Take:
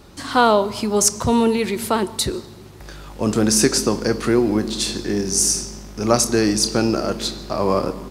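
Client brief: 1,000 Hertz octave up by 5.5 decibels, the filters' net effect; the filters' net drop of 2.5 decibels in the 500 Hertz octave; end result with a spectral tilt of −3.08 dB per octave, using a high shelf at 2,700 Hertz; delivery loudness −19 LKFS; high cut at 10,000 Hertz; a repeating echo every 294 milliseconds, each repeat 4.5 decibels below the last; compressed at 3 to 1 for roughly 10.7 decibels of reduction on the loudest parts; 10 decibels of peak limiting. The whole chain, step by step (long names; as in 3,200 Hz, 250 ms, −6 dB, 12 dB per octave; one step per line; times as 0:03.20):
low-pass filter 10,000 Hz
parametric band 500 Hz −5.5 dB
parametric band 1,000 Hz +7.5 dB
high-shelf EQ 2,700 Hz +5 dB
downward compressor 3 to 1, threshold −21 dBFS
brickwall limiter −17.5 dBFS
repeating echo 294 ms, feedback 60%, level −4.5 dB
level +7 dB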